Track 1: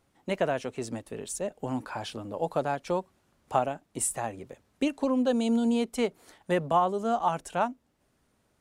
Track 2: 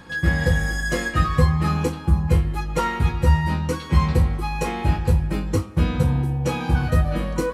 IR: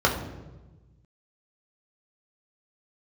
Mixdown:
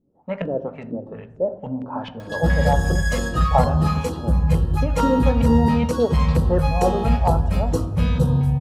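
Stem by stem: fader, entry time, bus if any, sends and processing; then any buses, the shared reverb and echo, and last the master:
+0.5 dB, 0.00 s, send -21.5 dB, LFO low-pass saw up 2.4 Hz 230–2500 Hz
0.0 dB, 2.20 s, send -23 dB, upward compressor, threshold -43 dBFS; soft clip -9.5 dBFS, distortion -19 dB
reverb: on, RT60 1.1 s, pre-delay 3 ms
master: LFO notch square 2.2 Hz 350–2200 Hz

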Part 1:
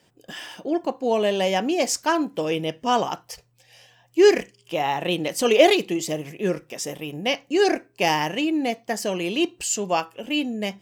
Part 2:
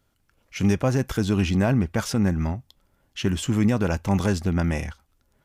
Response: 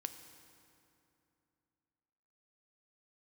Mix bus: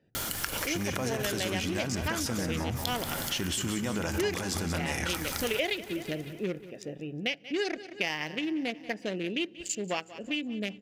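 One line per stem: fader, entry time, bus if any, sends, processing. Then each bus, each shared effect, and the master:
-4.0 dB, 0.00 s, send -19.5 dB, echo send -19.5 dB, Wiener smoothing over 41 samples; ten-band EQ 1000 Hz -4 dB, 2000 Hz +10 dB, 4000 Hz +6 dB
0.0 dB, 0.15 s, send -6.5 dB, echo send -11.5 dB, tilt +2.5 dB/oct; notch 2600 Hz, Q 23; fast leveller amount 100%; auto duck -10 dB, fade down 0.25 s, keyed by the first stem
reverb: on, RT60 2.8 s, pre-delay 3 ms
echo: feedback echo 0.183 s, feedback 49%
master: compressor 4:1, threshold -29 dBFS, peak gain reduction 14.5 dB

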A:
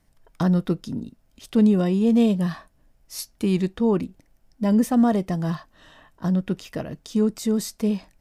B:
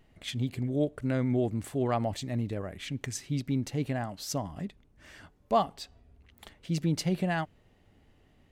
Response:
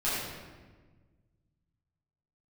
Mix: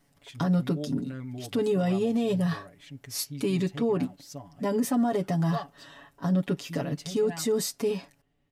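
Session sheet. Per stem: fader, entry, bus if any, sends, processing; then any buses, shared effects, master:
-1.0 dB, 0.00 s, no send, HPF 130 Hz 12 dB/oct; comb 7.1 ms, depth 87%
-13.5 dB, 0.00 s, no send, comb 7 ms, depth 98%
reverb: off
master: limiter -18.5 dBFS, peak gain reduction 9 dB

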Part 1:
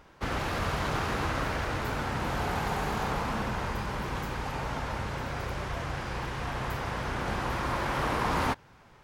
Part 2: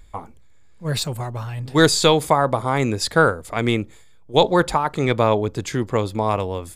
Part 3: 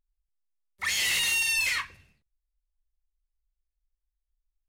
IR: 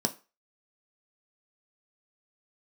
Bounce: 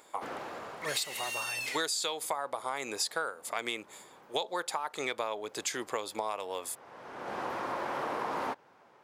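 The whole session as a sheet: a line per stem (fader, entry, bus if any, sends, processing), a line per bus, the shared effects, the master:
0.0 dB, 0.00 s, no send, tilt shelf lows +8.5 dB, about 810 Hz; auto duck -18 dB, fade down 1.45 s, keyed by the second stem
-3.0 dB, 0.00 s, no send, high shelf 3600 Hz +8 dB
-10.0 dB, 0.00 s, no send, dry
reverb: off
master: HPF 550 Hz 12 dB/oct; compressor 8:1, threshold -30 dBFS, peak gain reduction 16.5 dB

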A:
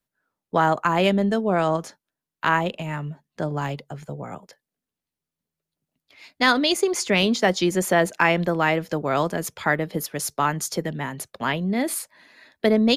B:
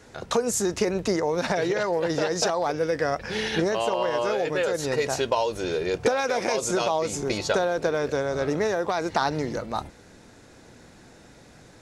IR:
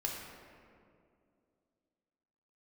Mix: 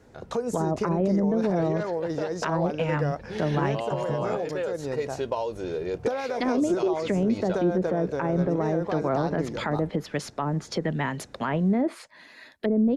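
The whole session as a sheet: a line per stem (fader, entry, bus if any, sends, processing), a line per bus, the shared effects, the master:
+2.5 dB, 0.00 s, no send, treble ducked by the level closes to 470 Hz, closed at -17 dBFS
-7.5 dB, 0.00 s, no send, tilt shelf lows +5.5 dB, about 1200 Hz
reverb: off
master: limiter -16 dBFS, peak gain reduction 11 dB

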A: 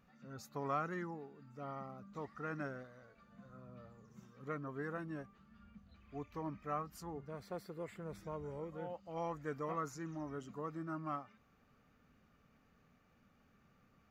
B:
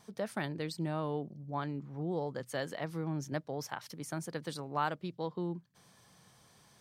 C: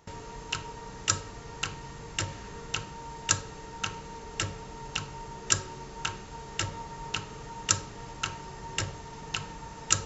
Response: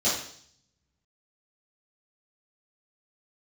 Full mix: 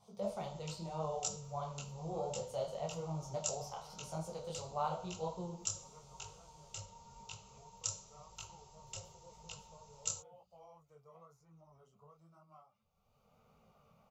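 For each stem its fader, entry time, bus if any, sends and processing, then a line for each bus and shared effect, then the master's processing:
-10.5 dB, 1.45 s, no send, notches 60/120/180/240/300/360/420 Hz; three-band squash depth 100%
+0.5 dB, 0.00 s, send -15.5 dB, high shelf 8000 Hz -9.5 dB
-12.0 dB, 0.15 s, send -22.5 dB, high shelf 6600 Hz +11 dB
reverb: on, RT60 0.60 s, pre-delay 3 ms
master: fixed phaser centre 710 Hz, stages 4; detuned doubles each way 33 cents

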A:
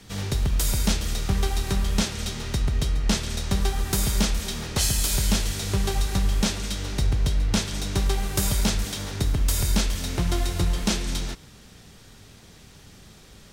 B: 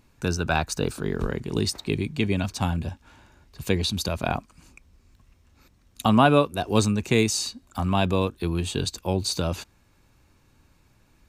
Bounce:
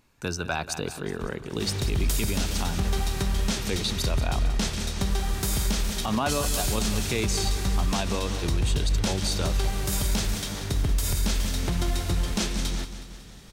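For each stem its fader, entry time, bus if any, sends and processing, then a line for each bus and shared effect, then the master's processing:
-1.0 dB, 1.50 s, no send, echo send -12.5 dB, dry
-1.0 dB, 0.00 s, no send, echo send -14 dB, low shelf 390 Hz -6 dB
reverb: off
echo: feedback echo 0.184 s, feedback 56%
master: limiter -16 dBFS, peak gain reduction 8.5 dB

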